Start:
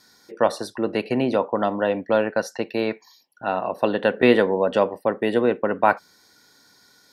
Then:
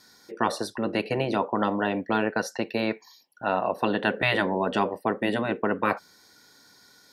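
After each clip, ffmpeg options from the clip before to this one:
ffmpeg -i in.wav -af "afftfilt=real='re*lt(hypot(re,im),0.562)':imag='im*lt(hypot(re,im),0.562)':win_size=1024:overlap=0.75" out.wav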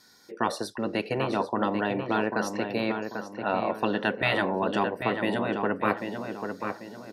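ffmpeg -i in.wav -filter_complex "[0:a]asplit=2[link_01][link_02];[link_02]adelay=792,lowpass=frequency=2700:poles=1,volume=-6dB,asplit=2[link_03][link_04];[link_04]adelay=792,lowpass=frequency=2700:poles=1,volume=0.39,asplit=2[link_05][link_06];[link_06]adelay=792,lowpass=frequency=2700:poles=1,volume=0.39,asplit=2[link_07][link_08];[link_08]adelay=792,lowpass=frequency=2700:poles=1,volume=0.39,asplit=2[link_09][link_10];[link_10]adelay=792,lowpass=frequency=2700:poles=1,volume=0.39[link_11];[link_01][link_03][link_05][link_07][link_09][link_11]amix=inputs=6:normalize=0,volume=-2dB" out.wav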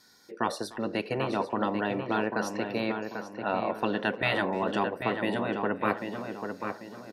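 ffmpeg -i in.wav -filter_complex "[0:a]asplit=2[link_01][link_02];[link_02]adelay=300,highpass=300,lowpass=3400,asoftclip=type=hard:threshold=-19dB,volume=-18dB[link_03];[link_01][link_03]amix=inputs=2:normalize=0,volume=-2dB" out.wav

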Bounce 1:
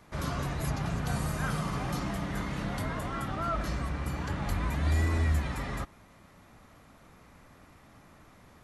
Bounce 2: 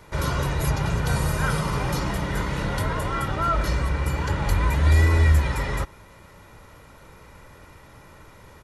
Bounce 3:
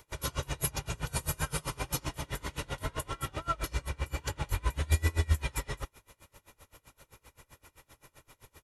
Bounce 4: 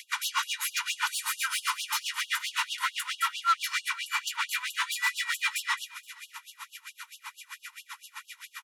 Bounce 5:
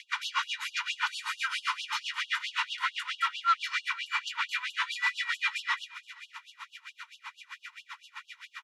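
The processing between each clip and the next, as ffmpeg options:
ffmpeg -i in.wav -af "aecho=1:1:2.1:0.49,volume=7.5dB" out.wav
ffmpeg -i in.wav -af "equalizer=frequency=190:width=6.9:gain=-14,aexciter=amount=2:drive=5.9:freq=2500,aeval=exprs='val(0)*pow(10,-28*(0.5-0.5*cos(2*PI*7.7*n/s))/20)':channel_layout=same,volume=-5.5dB" out.wav
ffmpeg -i in.wav -filter_complex "[0:a]asplit=2[link_01][link_02];[link_02]highpass=frequency=720:poles=1,volume=28dB,asoftclip=type=tanh:threshold=-13.5dB[link_03];[link_01][link_03]amix=inputs=2:normalize=0,lowpass=frequency=2600:poles=1,volume=-6dB,aecho=1:1:472|944:0.0668|0.0174,afftfilt=real='re*gte(b*sr/1024,830*pow(2800/830,0.5+0.5*sin(2*PI*4.5*pts/sr)))':imag='im*gte(b*sr/1024,830*pow(2800/830,0.5+0.5*sin(2*PI*4.5*pts/sr)))':win_size=1024:overlap=0.75" out.wav
ffmpeg -i in.wav -af "highpass=760,lowpass=4000" out.wav

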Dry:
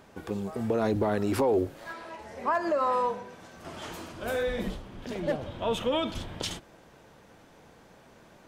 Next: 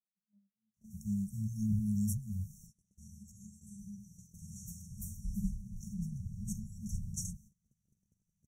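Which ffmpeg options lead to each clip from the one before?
ffmpeg -i in.wav -filter_complex "[0:a]acrossover=split=400|1400[link_01][link_02][link_03];[link_03]adelay=740[link_04];[link_01]adelay=770[link_05];[link_05][link_02][link_04]amix=inputs=3:normalize=0,afftfilt=real='re*(1-between(b*sr/4096,220,5500))':imag='im*(1-between(b*sr/4096,220,5500))':win_size=4096:overlap=0.75,agate=range=-22dB:threshold=-57dB:ratio=16:detection=peak,volume=1dB" out.wav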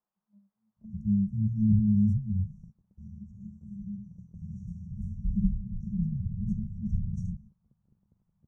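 ffmpeg -i in.wav -af "lowpass=frequency=990:width_type=q:width=2.1,volume=9dB" out.wav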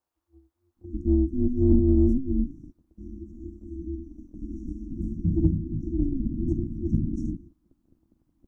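ffmpeg -i in.wav -filter_complex "[0:a]aeval=exprs='val(0)*sin(2*PI*130*n/s)':channel_layout=same,asplit=2[link_01][link_02];[link_02]asoftclip=type=tanh:threshold=-23.5dB,volume=-11dB[link_03];[link_01][link_03]amix=inputs=2:normalize=0,volume=5.5dB" out.wav

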